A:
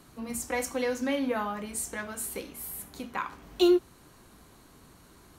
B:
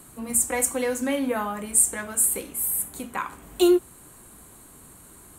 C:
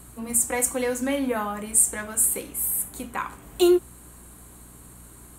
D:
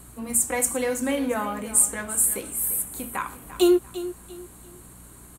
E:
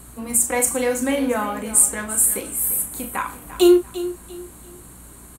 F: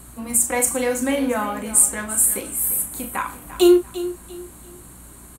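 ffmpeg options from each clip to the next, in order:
ffmpeg -i in.wav -af "highshelf=frequency=6700:width_type=q:width=3:gain=7.5,volume=3.5dB" out.wav
ffmpeg -i in.wav -af "aeval=exprs='val(0)+0.00355*(sin(2*PI*60*n/s)+sin(2*PI*2*60*n/s)/2+sin(2*PI*3*60*n/s)/3+sin(2*PI*4*60*n/s)/4+sin(2*PI*5*60*n/s)/5)':channel_layout=same" out.wav
ffmpeg -i in.wav -af "aecho=1:1:344|688|1032:0.2|0.0638|0.0204" out.wav
ffmpeg -i in.wav -filter_complex "[0:a]asplit=2[link_01][link_02];[link_02]adelay=37,volume=-9dB[link_03];[link_01][link_03]amix=inputs=2:normalize=0,volume=3.5dB" out.wav
ffmpeg -i in.wav -af "bandreject=frequency=450:width=12" out.wav

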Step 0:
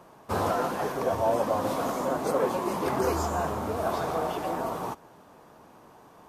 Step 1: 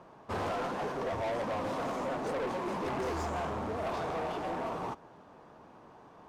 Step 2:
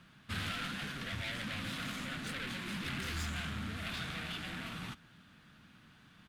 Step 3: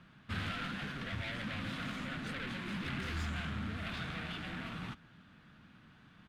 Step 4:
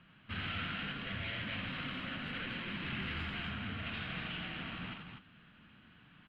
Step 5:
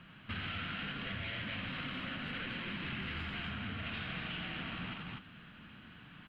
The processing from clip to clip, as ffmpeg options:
ffmpeg -i in.wav -af "adynamicsmooth=sensitivity=6:basefreq=4900,asoftclip=type=tanh:threshold=-29dB,volume=-1.5dB" out.wav
ffmpeg -i in.wav -af "firequalizer=gain_entry='entry(200,0);entry(400,-20);entry(970,-19);entry(1400,0);entry(3500,9);entry(5700,0);entry(10000,7)':delay=0.05:min_phase=1,volume=1dB" out.wav
ffmpeg -i in.wav -af "lowpass=frequency=2300:poles=1,volume=1.5dB" out.wav
ffmpeg -i in.wav -filter_complex "[0:a]highshelf=frequency=4500:width_type=q:width=3:gain=-13,bandreject=frequency=3500:width=12,asplit=2[link_01][link_02];[link_02]aecho=0:1:84.55|247.8:0.562|0.562[link_03];[link_01][link_03]amix=inputs=2:normalize=0,volume=-4dB" out.wav
ffmpeg -i in.wav -af "acompressor=threshold=-46dB:ratio=3,volume=6.5dB" out.wav

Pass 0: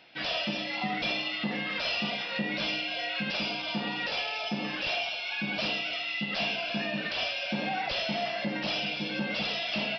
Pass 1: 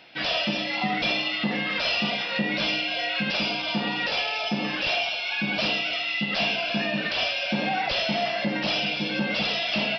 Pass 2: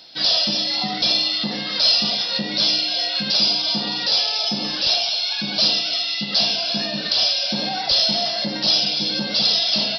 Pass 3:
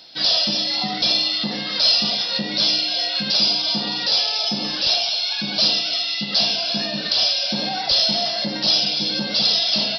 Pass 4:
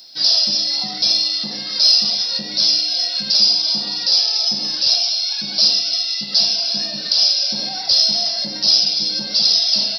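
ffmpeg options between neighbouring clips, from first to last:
ffmpeg -i in.wav -af "acontrast=37" out.wav
ffmpeg -i in.wav -af "highshelf=frequency=3300:width_type=q:width=3:gain=10" out.wav
ffmpeg -i in.wav -af anull out.wav
ffmpeg -i in.wav -af "aexciter=amount=8:drive=1.5:freq=4600,volume=-6dB" out.wav

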